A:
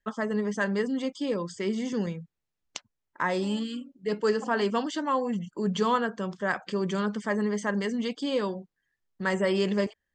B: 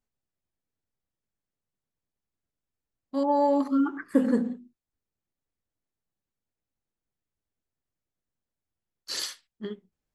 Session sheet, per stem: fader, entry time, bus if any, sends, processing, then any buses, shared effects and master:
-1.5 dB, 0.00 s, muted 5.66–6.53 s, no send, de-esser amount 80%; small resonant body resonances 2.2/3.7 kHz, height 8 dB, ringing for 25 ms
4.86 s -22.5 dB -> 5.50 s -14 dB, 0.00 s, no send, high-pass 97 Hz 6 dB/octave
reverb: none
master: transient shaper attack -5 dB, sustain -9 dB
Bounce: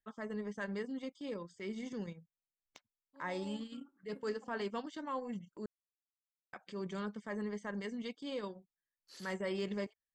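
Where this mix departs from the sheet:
stem A -1.5 dB -> -11.0 dB; stem B -22.5 dB -> -29.0 dB

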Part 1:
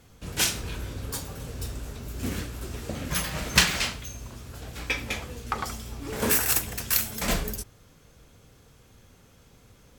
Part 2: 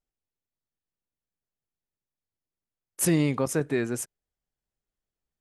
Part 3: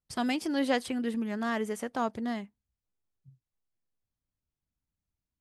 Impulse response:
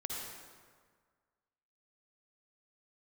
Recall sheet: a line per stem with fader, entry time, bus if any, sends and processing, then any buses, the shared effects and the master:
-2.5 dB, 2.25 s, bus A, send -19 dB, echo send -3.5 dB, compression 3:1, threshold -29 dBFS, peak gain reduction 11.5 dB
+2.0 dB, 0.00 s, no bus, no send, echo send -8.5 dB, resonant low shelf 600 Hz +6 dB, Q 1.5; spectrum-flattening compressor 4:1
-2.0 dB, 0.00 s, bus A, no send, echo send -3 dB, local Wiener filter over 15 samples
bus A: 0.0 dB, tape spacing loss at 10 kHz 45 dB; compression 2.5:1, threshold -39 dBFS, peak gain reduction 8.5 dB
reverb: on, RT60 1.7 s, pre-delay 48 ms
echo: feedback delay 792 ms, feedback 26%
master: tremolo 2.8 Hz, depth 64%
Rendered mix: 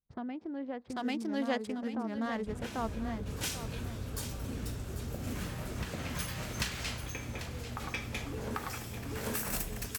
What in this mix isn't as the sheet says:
stem 2: muted; master: missing tremolo 2.8 Hz, depth 64%

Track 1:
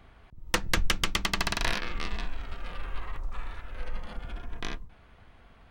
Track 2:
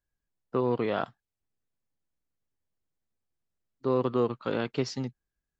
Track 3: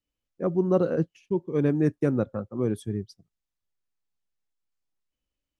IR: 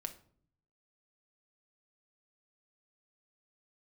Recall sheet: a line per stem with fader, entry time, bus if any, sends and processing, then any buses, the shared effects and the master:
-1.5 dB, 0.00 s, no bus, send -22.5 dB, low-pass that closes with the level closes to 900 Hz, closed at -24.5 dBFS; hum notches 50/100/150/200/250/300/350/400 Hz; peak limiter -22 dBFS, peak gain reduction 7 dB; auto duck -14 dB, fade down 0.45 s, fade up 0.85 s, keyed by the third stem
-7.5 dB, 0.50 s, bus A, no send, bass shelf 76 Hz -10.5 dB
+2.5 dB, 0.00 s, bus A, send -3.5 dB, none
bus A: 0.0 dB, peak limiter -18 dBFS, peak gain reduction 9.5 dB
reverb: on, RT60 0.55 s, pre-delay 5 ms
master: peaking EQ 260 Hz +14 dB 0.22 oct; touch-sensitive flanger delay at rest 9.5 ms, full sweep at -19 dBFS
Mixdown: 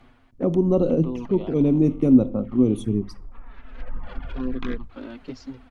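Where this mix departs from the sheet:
stem 1 -1.5 dB -> +5.5 dB; stem 2: missing bass shelf 76 Hz -10.5 dB

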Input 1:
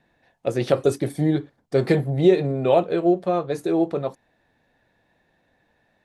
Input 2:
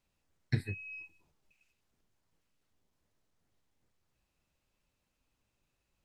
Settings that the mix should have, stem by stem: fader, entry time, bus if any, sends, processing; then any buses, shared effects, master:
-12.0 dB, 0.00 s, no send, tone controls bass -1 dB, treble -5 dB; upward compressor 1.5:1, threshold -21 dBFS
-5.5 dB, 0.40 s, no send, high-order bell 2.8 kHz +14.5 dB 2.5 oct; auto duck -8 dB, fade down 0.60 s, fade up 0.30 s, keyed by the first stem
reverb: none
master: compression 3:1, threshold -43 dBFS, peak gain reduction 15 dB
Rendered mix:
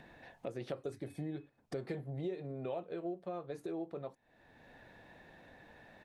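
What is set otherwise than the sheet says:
stem 1 -12.0 dB -> -5.5 dB; stem 2: missing high-order bell 2.8 kHz +14.5 dB 2.5 oct

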